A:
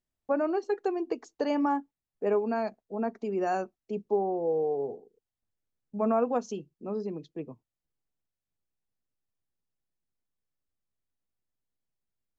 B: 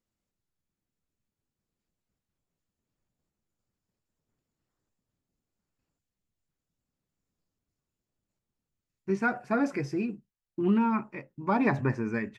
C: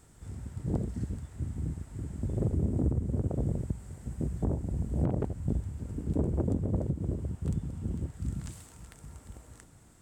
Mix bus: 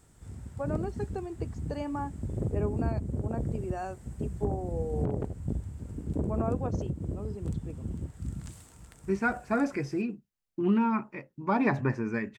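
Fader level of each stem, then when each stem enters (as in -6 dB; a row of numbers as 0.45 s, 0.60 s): -7.5 dB, -0.5 dB, -2.0 dB; 0.30 s, 0.00 s, 0.00 s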